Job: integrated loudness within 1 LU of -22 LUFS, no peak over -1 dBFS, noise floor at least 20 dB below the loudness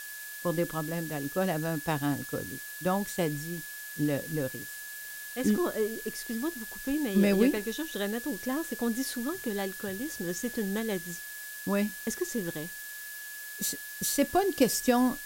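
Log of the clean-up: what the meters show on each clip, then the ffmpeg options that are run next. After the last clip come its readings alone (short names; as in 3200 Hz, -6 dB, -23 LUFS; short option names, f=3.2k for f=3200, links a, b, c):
steady tone 1700 Hz; tone level -42 dBFS; noise floor -42 dBFS; noise floor target -51 dBFS; loudness -31.0 LUFS; peak -10.5 dBFS; loudness target -22.0 LUFS
-> -af "bandreject=f=1.7k:w=30"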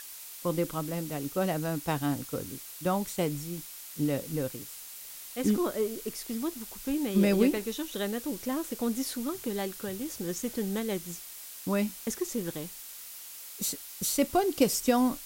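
steady tone none; noise floor -45 dBFS; noise floor target -52 dBFS
-> -af "afftdn=nr=7:nf=-45"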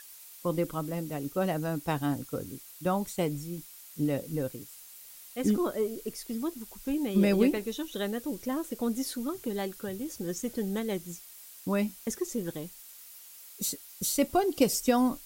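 noise floor -50 dBFS; noise floor target -52 dBFS
-> -af "afftdn=nr=6:nf=-50"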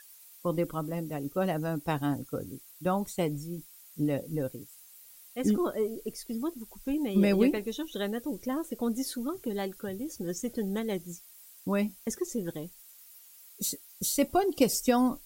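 noise floor -54 dBFS; loudness -31.5 LUFS; peak -11.0 dBFS; loudness target -22.0 LUFS
-> -af "volume=9.5dB"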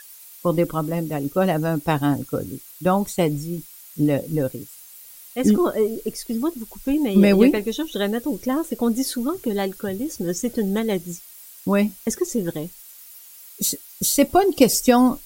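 loudness -22.0 LUFS; peak -1.5 dBFS; noise floor -44 dBFS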